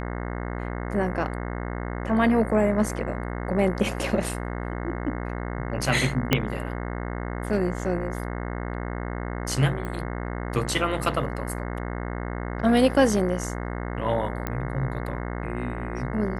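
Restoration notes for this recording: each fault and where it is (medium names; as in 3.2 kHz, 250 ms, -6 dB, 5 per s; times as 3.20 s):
buzz 60 Hz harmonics 36 -31 dBFS
6.33 s: pop -4 dBFS
9.85 s: pop -21 dBFS
14.47 s: pop -14 dBFS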